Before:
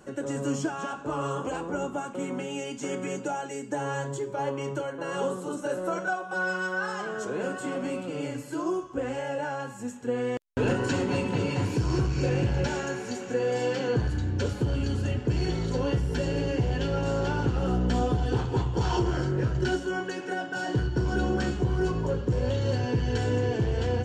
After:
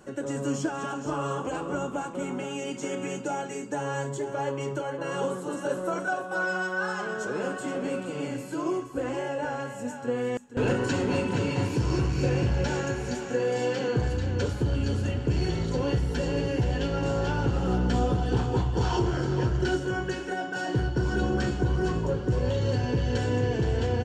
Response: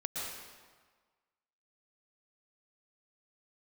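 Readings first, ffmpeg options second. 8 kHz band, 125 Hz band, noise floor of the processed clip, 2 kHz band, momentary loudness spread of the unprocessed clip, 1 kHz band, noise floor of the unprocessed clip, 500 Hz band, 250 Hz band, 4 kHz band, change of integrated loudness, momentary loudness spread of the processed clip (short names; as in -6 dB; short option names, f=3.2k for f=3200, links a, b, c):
+0.5 dB, +0.5 dB, -37 dBFS, +0.5 dB, 6 LU, +0.5 dB, -40 dBFS, +0.5 dB, +0.5 dB, +0.5 dB, +0.5 dB, 6 LU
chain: -af "aecho=1:1:471:0.355"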